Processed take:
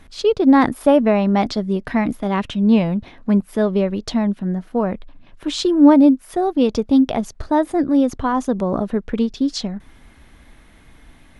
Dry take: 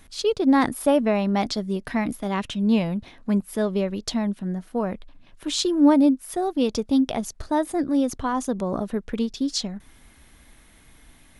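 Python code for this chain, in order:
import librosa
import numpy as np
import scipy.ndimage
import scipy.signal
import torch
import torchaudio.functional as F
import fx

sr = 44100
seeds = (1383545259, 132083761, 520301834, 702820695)

y = fx.lowpass(x, sr, hz=2500.0, slope=6)
y = y * 10.0 ** (6.0 / 20.0)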